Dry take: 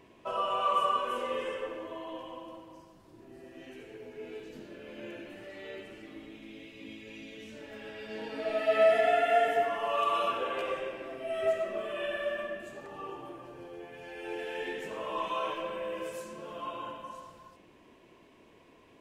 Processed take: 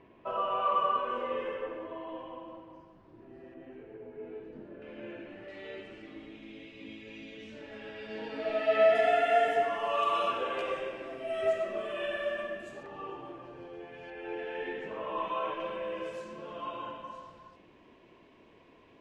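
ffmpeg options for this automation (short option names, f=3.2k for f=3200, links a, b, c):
-af "asetnsamples=n=441:p=0,asendcmd='3.54 lowpass f 1300;4.82 lowpass f 2500;5.48 lowpass f 4700;8.95 lowpass f 8400;12.83 lowpass f 4200;14.1 lowpass f 2500;15.6 lowpass f 4400',lowpass=2.3k"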